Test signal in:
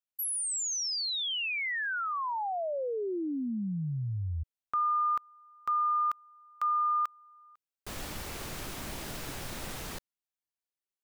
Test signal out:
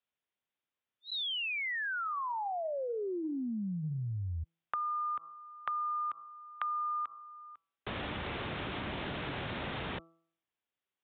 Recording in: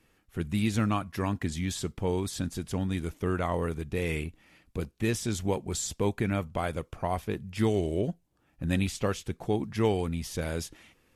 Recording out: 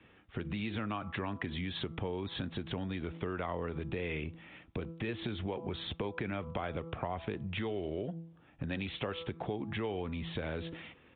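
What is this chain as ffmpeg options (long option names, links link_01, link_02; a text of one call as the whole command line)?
ffmpeg -i in.wav -filter_complex "[0:a]highpass=71,aresample=8000,aresample=44100,acrossover=split=300|540|1900[link_01][link_02][link_03][link_04];[link_01]alimiter=level_in=5dB:limit=-24dB:level=0:latency=1:release=356,volume=-5dB[link_05];[link_05][link_02][link_03][link_04]amix=inputs=4:normalize=0,bandreject=frequency=165.5:width_type=h:width=4,bandreject=frequency=331:width_type=h:width=4,bandreject=frequency=496.5:width_type=h:width=4,bandreject=frequency=662:width_type=h:width=4,bandreject=frequency=827.5:width_type=h:width=4,bandreject=frequency=993:width_type=h:width=4,bandreject=frequency=1158.5:width_type=h:width=4,bandreject=frequency=1324:width_type=h:width=4,acompressor=threshold=-42dB:ratio=5:attack=9.4:release=129:knee=1:detection=peak,volume=6.5dB" out.wav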